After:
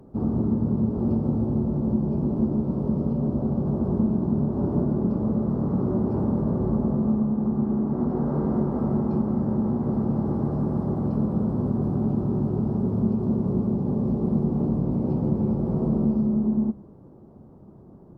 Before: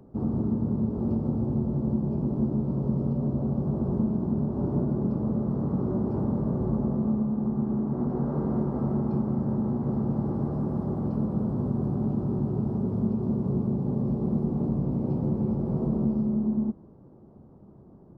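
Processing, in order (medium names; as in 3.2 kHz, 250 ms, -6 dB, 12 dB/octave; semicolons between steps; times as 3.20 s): de-hum 67.47 Hz, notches 3; trim +3.5 dB; Opus 48 kbps 48 kHz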